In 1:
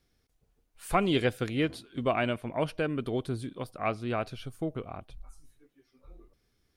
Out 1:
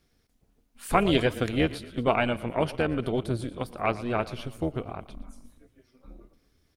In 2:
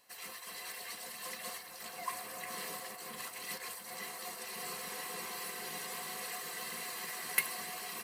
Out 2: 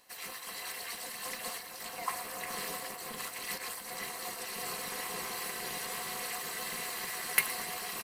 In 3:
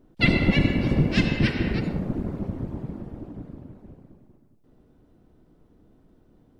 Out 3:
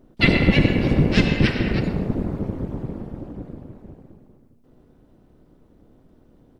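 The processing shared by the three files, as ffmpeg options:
ffmpeg -i in.wav -filter_complex "[0:a]asplit=6[link_01][link_02][link_03][link_04][link_05][link_06];[link_02]adelay=116,afreqshift=-30,volume=-17dB[link_07];[link_03]adelay=232,afreqshift=-60,volume=-21.7dB[link_08];[link_04]adelay=348,afreqshift=-90,volume=-26.5dB[link_09];[link_05]adelay=464,afreqshift=-120,volume=-31.2dB[link_10];[link_06]adelay=580,afreqshift=-150,volume=-35.9dB[link_11];[link_01][link_07][link_08][link_09][link_10][link_11]amix=inputs=6:normalize=0,tremolo=f=240:d=0.667,volume=6.5dB" out.wav

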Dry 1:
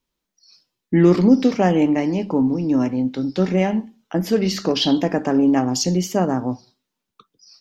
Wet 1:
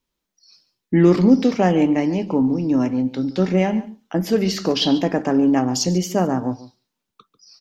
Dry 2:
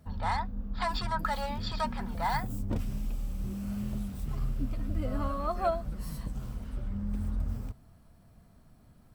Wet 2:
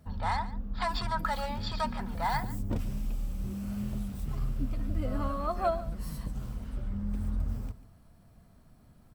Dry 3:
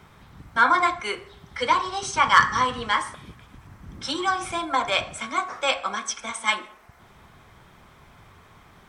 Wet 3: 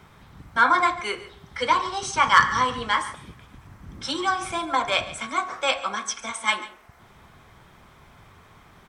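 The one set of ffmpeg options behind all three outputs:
ffmpeg -i in.wav -af "aecho=1:1:143:0.141" out.wav

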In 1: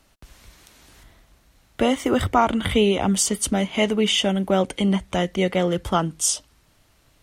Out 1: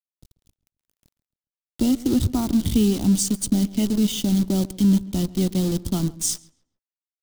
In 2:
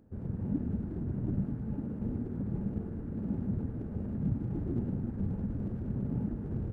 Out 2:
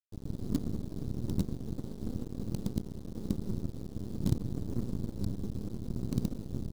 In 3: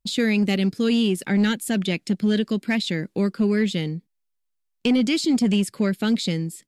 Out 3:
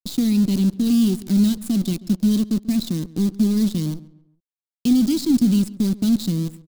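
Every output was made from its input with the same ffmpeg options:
ffmpeg -i in.wav -filter_complex "[0:a]acrusher=bits=5:dc=4:mix=0:aa=0.000001,firequalizer=gain_entry='entry(300,0);entry(460,-17);entry(1700,-27);entry(3900,-6)':delay=0.05:min_phase=1,aeval=exprs='sgn(val(0))*max(abs(val(0))-0.00596,0)':channel_layout=same,asplit=2[link_01][link_02];[link_02]adelay=137,lowpass=frequency=2100:poles=1,volume=-18.5dB,asplit=2[link_03][link_04];[link_04]adelay=137,lowpass=frequency=2100:poles=1,volume=0.38,asplit=2[link_05][link_06];[link_06]adelay=137,lowpass=frequency=2100:poles=1,volume=0.38[link_07];[link_03][link_05][link_07]amix=inputs=3:normalize=0[link_08];[link_01][link_08]amix=inputs=2:normalize=0,volume=4dB" out.wav

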